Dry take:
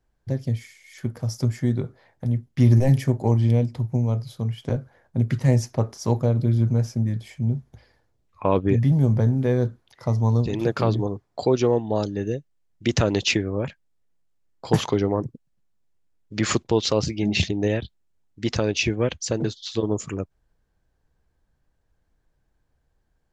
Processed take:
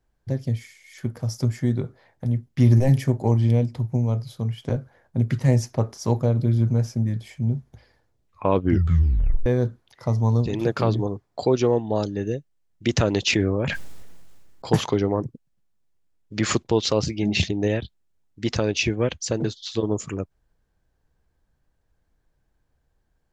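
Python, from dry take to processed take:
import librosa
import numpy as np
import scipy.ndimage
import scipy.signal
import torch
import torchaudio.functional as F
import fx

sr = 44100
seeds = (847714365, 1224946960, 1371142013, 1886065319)

y = fx.sustainer(x, sr, db_per_s=25.0, at=(13.32, 14.71), fade=0.02)
y = fx.edit(y, sr, fx.tape_stop(start_s=8.6, length_s=0.86), tone=tone)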